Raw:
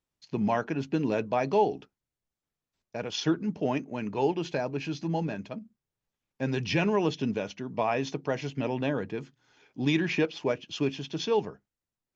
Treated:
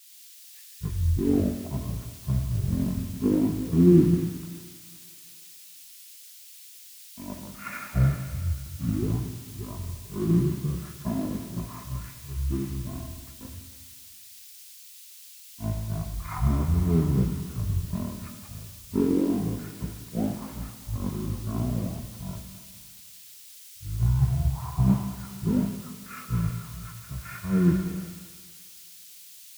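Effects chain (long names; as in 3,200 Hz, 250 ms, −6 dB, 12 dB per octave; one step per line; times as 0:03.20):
treble cut that deepens with the level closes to 1,000 Hz, closed at −22.5 dBFS
change of speed 0.411×
in parallel at −9 dB: bit-depth reduction 6 bits, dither triangular
on the sum: convolution reverb RT60 3.3 s, pre-delay 20 ms, DRR 3.5 dB
multiband upward and downward expander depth 100%
level −3.5 dB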